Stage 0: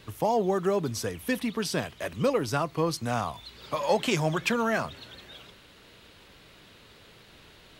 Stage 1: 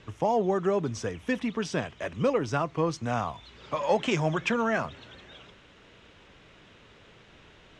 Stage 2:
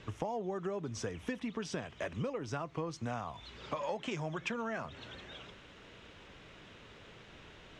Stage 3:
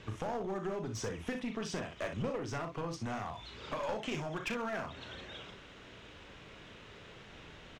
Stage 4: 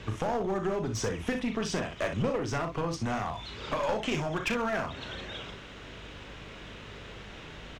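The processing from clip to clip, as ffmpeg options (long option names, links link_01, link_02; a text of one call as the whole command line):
ffmpeg -i in.wav -af "lowpass=frequency=6600:width=0.5412,lowpass=frequency=6600:width=1.3066,equalizer=frequency=4400:width=2.8:gain=-10.5" out.wav
ffmpeg -i in.wav -af "acompressor=threshold=-34dB:ratio=10" out.wav
ffmpeg -i in.wav -filter_complex "[0:a]asplit=2[link_01][link_02];[link_02]aecho=0:1:37|61:0.398|0.335[link_03];[link_01][link_03]amix=inputs=2:normalize=0,aeval=exprs='clip(val(0),-1,0.015)':channel_layout=same,volume=1dB" out.wav
ffmpeg -i in.wav -af "aeval=exprs='val(0)+0.00141*(sin(2*PI*50*n/s)+sin(2*PI*2*50*n/s)/2+sin(2*PI*3*50*n/s)/3+sin(2*PI*4*50*n/s)/4+sin(2*PI*5*50*n/s)/5)':channel_layout=same,volume=7dB" out.wav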